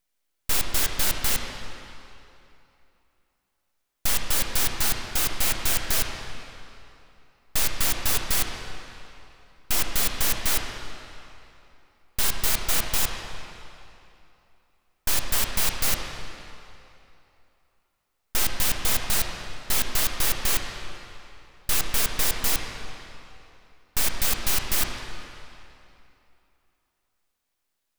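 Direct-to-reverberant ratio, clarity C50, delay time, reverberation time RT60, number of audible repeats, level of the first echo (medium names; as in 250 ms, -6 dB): 2.0 dB, 3.0 dB, no echo, 2.9 s, no echo, no echo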